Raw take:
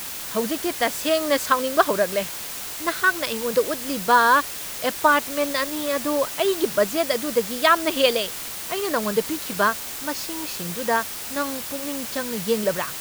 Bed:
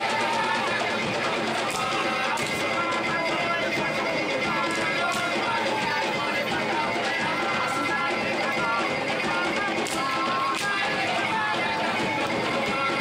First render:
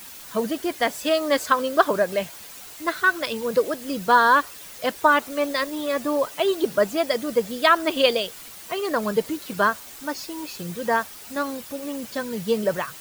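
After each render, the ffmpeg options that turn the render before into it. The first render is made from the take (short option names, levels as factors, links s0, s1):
-af "afftdn=nr=10:nf=-33"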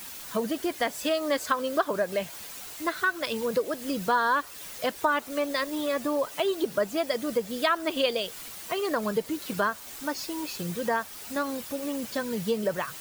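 -af "acompressor=threshold=0.0447:ratio=2"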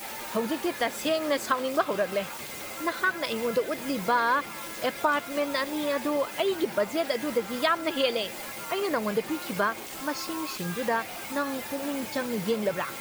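-filter_complex "[1:a]volume=0.178[s0];[0:a][s0]amix=inputs=2:normalize=0"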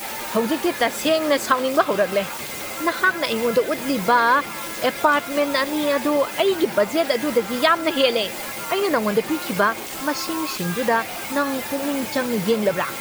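-af "volume=2.37"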